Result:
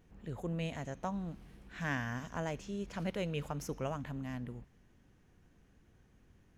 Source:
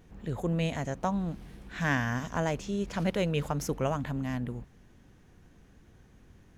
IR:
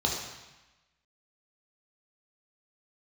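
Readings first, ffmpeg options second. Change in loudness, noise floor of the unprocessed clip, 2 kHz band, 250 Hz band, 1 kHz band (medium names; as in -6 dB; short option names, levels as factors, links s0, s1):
-8.0 dB, -58 dBFS, -7.5 dB, -8.0 dB, -8.0 dB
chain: -filter_complex "[0:a]asplit=2[s0][s1];[s1]highpass=f=1300:w=0.5412,highpass=f=1300:w=1.3066[s2];[1:a]atrim=start_sample=2205,asetrate=38808,aresample=44100[s3];[s2][s3]afir=irnorm=-1:irlink=0,volume=0.0531[s4];[s0][s4]amix=inputs=2:normalize=0,volume=0.398"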